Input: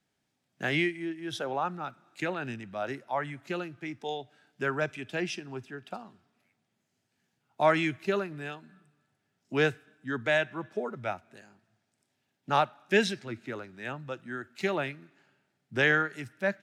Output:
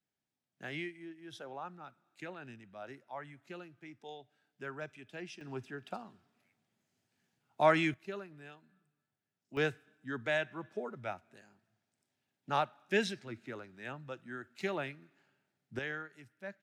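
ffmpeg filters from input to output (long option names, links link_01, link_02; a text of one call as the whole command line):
ffmpeg -i in.wav -af "asetnsamples=nb_out_samples=441:pad=0,asendcmd='5.41 volume volume -2.5dB;7.94 volume volume -13.5dB;9.57 volume volume -6.5dB;15.79 volume volume -16dB',volume=-13dB" out.wav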